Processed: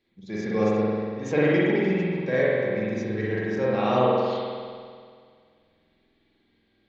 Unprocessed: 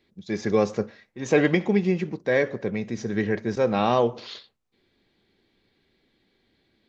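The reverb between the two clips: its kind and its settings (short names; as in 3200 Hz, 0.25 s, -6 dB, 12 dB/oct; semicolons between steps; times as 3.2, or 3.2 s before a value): spring tank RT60 2 s, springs 47 ms, chirp 20 ms, DRR -7 dB; gain -7.5 dB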